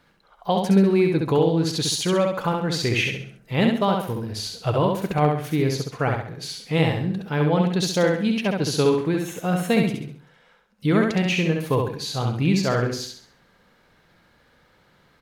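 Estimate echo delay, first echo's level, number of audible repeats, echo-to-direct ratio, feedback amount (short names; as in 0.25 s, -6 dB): 67 ms, -3.5 dB, 4, -3.0 dB, 39%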